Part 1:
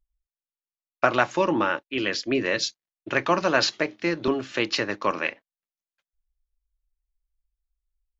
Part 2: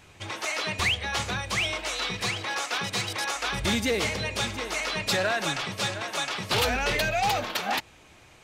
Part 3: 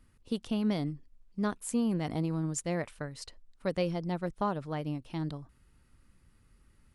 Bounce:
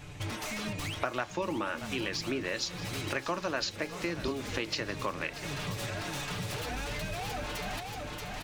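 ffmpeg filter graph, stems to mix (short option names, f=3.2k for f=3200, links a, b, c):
-filter_complex "[0:a]lowshelf=f=240:g=-9,crystalizer=i=1:c=0,volume=-1dB,asplit=3[a][b][c];[b]volume=-18dB[d];[1:a]aecho=1:1:6.8:0.71,acompressor=threshold=-32dB:ratio=12,aeval=exprs='0.0237*(abs(mod(val(0)/0.0237+3,4)-2)-1)':c=same,volume=0.5dB,asplit=2[e][f];[f]volume=-5dB[g];[2:a]volume=-16dB[h];[c]apad=whole_len=372374[i];[e][i]sidechaincompress=threshold=-28dB:ratio=8:attack=24:release=530[j];[d][g]amix=inputs=2:normalize=0,aecho=0:1:631|1262|1893|2524|3155:1|0.39|0.152|0.0593|0.0231[k];[a][j][h][k]amix=inputs=4:normalize=0,lowshelf=f=210:g=12,acompressor=threshold=-33dB:ratio=3"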